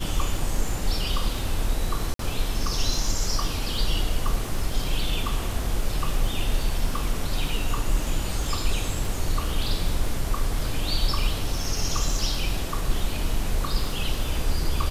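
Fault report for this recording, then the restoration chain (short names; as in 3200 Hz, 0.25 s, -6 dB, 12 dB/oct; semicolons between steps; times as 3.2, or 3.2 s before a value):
crackle 32/s -31 dBFS
2.14–2.19 gap 53 ms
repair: de-click; interpolate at 2.14, 53 ms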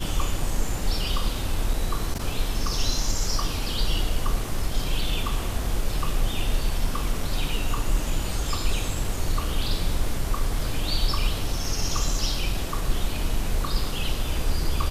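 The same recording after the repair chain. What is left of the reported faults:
none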